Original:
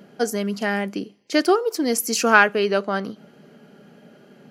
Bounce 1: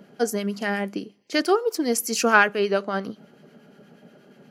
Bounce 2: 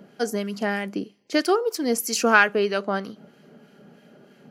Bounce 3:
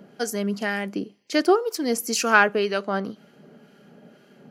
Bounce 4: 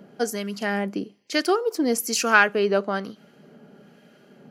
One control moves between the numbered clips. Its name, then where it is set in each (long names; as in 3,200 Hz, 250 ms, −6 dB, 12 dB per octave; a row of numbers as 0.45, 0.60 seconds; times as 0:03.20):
two-band tremolo in antiphase, speed: 8.4, 3.1, 2, 1.1 Hertz